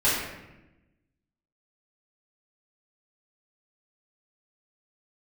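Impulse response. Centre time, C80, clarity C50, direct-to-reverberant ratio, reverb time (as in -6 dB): 70 ms, 3.5 dB, 0.5 dB, -10.0 dB, 1.0 s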